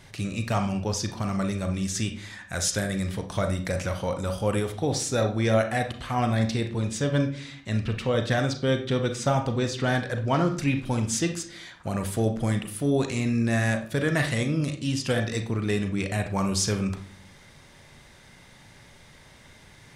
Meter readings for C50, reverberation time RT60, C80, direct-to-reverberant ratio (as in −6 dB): 9.5 dB, 0.55 s, 15.0 dB, 5.5 dB